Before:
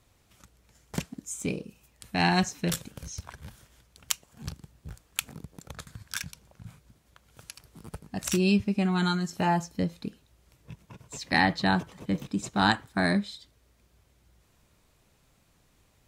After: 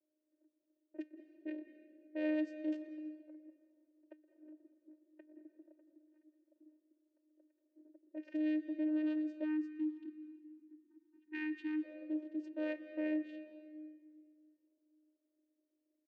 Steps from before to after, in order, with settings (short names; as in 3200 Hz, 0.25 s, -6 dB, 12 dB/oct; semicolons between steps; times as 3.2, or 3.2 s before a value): one diode to ground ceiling -16.5 dBFS; 5.66–8.08 compressor 6:1, threshold -44 dBFS, peak gain reduction 14 dB; bell 170 Hz +14 dB 0.48 oct; vocoder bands 8, saw 307 Hz; vowel filter e; echo 0.121 s -23 dB; low-pass opened by the level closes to 520 Hz, open at -37.5 dBFS; on a send at -11 dB: dynamic EQ 940 Hz, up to -5 dB, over -56 dBFS, Q 1.1 + reverb RT60 2.0 s, pre-delay 0.162 s; 9.45–11.84 on the sum: spectral delete 380–770 Hz